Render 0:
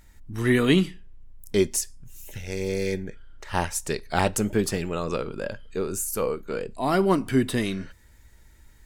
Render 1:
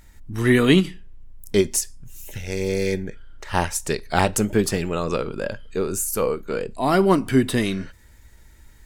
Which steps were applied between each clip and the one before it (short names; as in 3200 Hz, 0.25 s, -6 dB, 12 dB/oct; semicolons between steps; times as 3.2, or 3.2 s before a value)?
ending taper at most 280 dB/s; gain +4 dB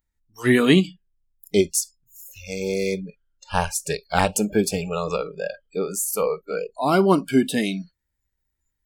spectral noise reduction 30 dB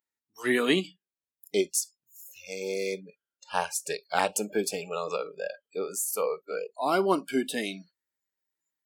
HPF 330 Hz 12 dB/oct; gain -5 dB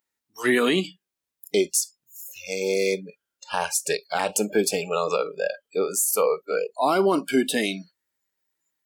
limiter -19 dBFS, peak gain reduction 11.5 dB; gain +8 dB